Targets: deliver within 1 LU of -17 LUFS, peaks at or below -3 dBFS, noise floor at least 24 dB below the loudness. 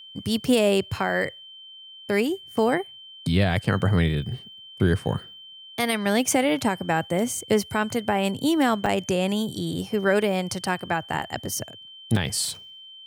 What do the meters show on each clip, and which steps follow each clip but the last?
dropouts 2; longest dropout 4.0 ms; steady tone 3.1 kHz; tone level -42 dBFS; loudness -24.5 LUFS; peak level -9.0 dBFS; loudness target -17.0 LUFS
-> interpolate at 8.86/12.16 s, 4 ms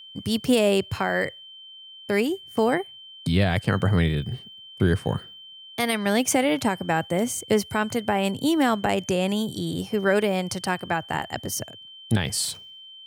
dropouts 0; steady tone 3.1 kHz; tone level -42 dBFS
-> band-stop 3.1 kHz, Q 30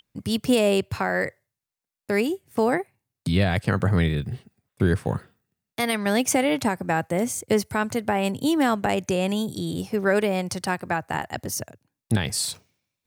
steady tone not found; loudness -24.5 LUFS; peak level -9.0 dBFS; loudness target -17.0 LUFS
-> trim +7.5 dB; peak limiter -3 dBFS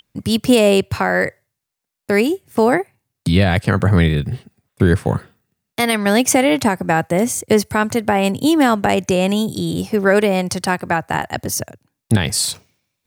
loudness -17.0 LUFS; peak level -3.0 dBFS; noise floor -80 dBFS

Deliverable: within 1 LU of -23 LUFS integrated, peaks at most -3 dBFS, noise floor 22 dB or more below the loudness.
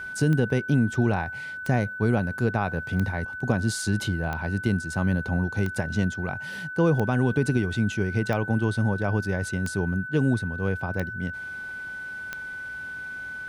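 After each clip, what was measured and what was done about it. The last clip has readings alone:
clicks found 10; steady tone 1.5 kHz; tone level -33 dBFS; loudness -26.5 LUFS; peak level -8.0 dBFS; loudness target -23.0 LUFS
-> de-click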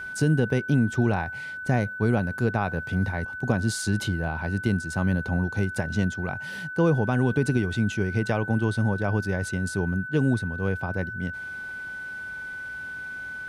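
clicks found 0; steady tone 1.5 kHz; tone level -33 dBFS
-> band-stop 1.5 kHz, Q 30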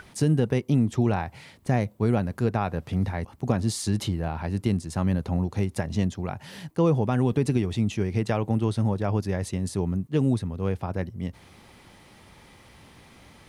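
steady tone not found; loudness -26.5 LUFS; peak level -8.0 dBFS; loudness target -23.0 LUFS
-> trim +3.5 dB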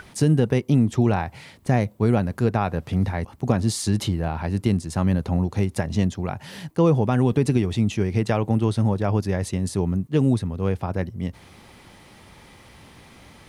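loudness -23.0 LUFS; peak level -4.5 dBFS; noise floor -49 dBFS

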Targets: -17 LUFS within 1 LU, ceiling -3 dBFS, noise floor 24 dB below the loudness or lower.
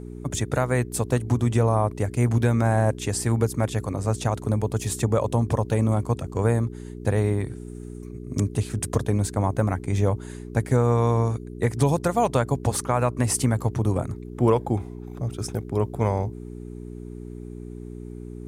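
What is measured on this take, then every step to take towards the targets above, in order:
hum 60 Hz; highest harmonic 420 Hz; hum level -35 dBFS; loudness -24.5 LUFS; peak level -9.0 dBFS; loudness target -17.0 LUFS
-> de-hum 60 Hz, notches 7; trim +7.5 dB; peak limiter -3 dBFS

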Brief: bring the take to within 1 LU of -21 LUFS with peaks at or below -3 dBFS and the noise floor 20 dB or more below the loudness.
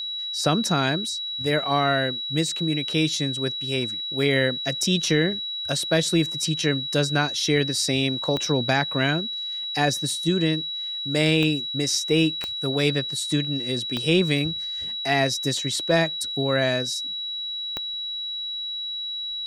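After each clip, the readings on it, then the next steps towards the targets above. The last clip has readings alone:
clicks found 5; steady tone 3.9 kHz; tone level -28 dBFS; loudness -23.5 LUFS; peak level -6.5 dBFS; loudness target -21.0 LUFS
-> de-click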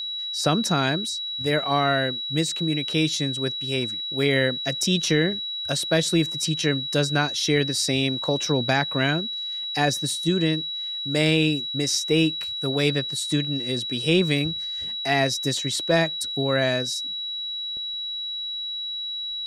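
clicks found 0; steady tone 3.9 kHz; tone level -28 dBFS
-> band-stop 3.9 kHz, Q 30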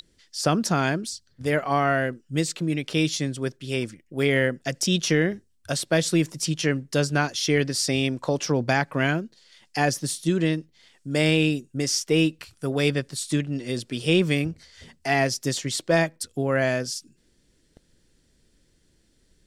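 steady tone not found; loudness -24.5 LUFS; peak level -7.0 dBFS; loudness target -21.0 LUFS
-> trim +3.5 dB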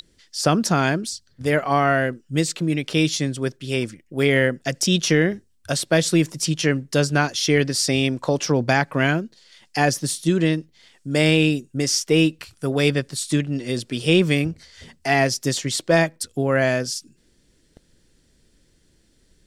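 loudness -21.0 LUFS; peak level -3.5 dBFS; noise floor -61 dBFS

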